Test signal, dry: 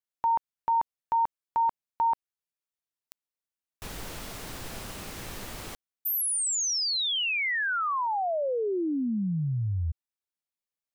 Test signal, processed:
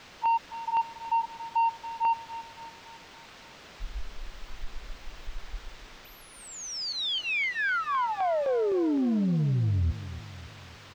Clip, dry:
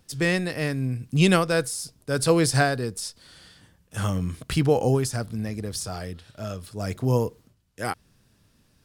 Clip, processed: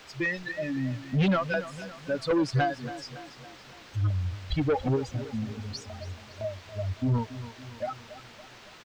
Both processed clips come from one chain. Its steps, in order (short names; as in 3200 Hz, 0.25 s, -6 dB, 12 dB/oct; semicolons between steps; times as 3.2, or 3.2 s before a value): per-bin expansion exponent 3; high shelf 11000 Hz -8 dB; upward compressor, threshold -28 dBFS; LFO notch saw down 3.9 Hz 600–4100 Hz; requantised 8-bit, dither triangular; soft clip -26.5 dBFS; air absorption 190 m; feedback echo 0.28 s, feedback 52%, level -14 dB; gain +6.5 dB